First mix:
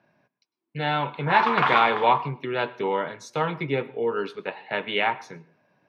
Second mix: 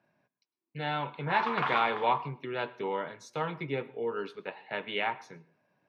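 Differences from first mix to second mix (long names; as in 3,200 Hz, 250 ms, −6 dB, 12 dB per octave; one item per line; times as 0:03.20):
speech −7.5 dB
background −9.0 dB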